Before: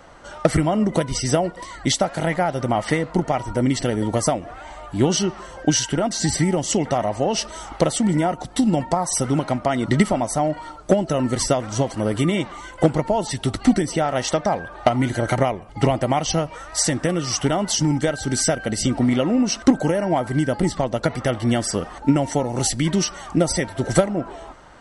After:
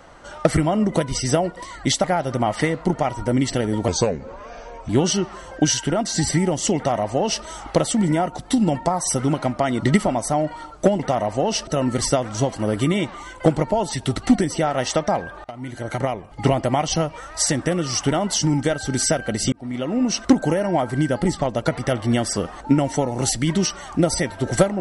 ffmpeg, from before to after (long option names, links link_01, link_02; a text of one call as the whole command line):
ffmpeg -i in.wav -filter_complex "[0:a]asplit=8[link_01][link_02][link_03][link_04][link_05][link_06][link_07][link_08];[link_01]atrim=end=2.042[link_09];[link_02]atrim=start=2.328:end=4.174[link_10];[link_03]atrim=start=4.17:end=4.95,asetpts=PTS-STARTPTS,asetrate=33957,aresample=44100[link_11];[link_04]atrim=start=4.946:end=11.052[link_12];[link_05]atrim=start=6.818:end=7.502[link_13];[link_06]atrim=start=11.048:end=14.82,asetpts=PTS-STARTPTS,afade=type=out:start_time=3.768:duration=0.004:curve=hsin:silence=0.0668344[link_14];[link_07]atrim=start=14.82:end=18.9,asetpts=PTS-STARTPTS,afade=type=in:duration=0.99:silence=0.0668344,afade=type=out:start_time=4.076:duration=0.004:curve=hsin[link_15];[link_08]atrim=start=18.9,asetpts=PTS-STARTPTS,afade=type=in:duration=0.6[link_16];[link_09][link_10]acrossfade=duration=0.004:curve1=hsin:curve2=hsin[link_17];[link_17][link_11]acrossfade=duration=0.004:curve1=hsin:curve2=hsin[link_18];[link_18][link_12]acrossfade=duration=0.004:curve1=hsin:curve2=hsin[link_19];[link_19][link_13]acrossfade=duration=0.004:curve1=hsin:curve2=hsin[link_20];[link_14][link_15][link_16]concat=n=3:v=0:a=1[link_21];[link_20][link_21]acrossfade=duration=0.004:curve1=hsin:curve2=hsin" out.wav